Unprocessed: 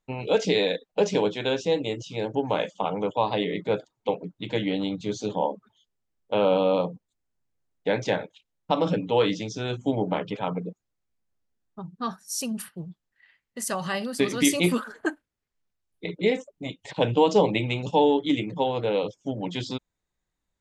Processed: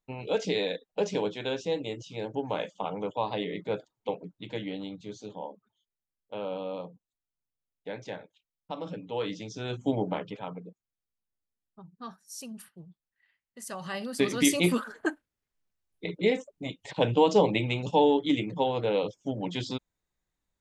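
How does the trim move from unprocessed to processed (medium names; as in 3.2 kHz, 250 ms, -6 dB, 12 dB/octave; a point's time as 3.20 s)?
4.16 s -6 dB
5.42 s -13.5 dB
8.93 s -13.5 dB
9.92 s -2 dB
10.61 s -11.5 dB
13.61 s -11.5 dB
14.23 s -2 dB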